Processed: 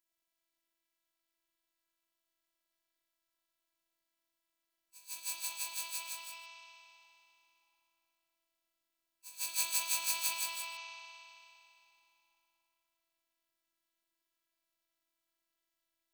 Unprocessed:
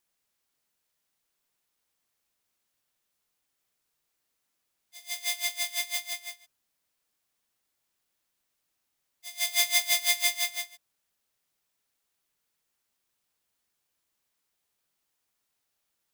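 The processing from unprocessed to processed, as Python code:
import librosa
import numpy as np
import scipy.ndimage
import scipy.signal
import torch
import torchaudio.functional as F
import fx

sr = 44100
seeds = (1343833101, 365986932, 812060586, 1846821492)

y = fx.rev_spring(x, sr, rt60_s=2.9, pass_ms=(51,), chirp_ms=80, drr_db=-2.5)
y = fx.robotise(y, sr, hz=331.0)
y = fx.formant_shift(y, sr, semitones=4)
y = y * 10.0 ** (-6.0 / 20.0)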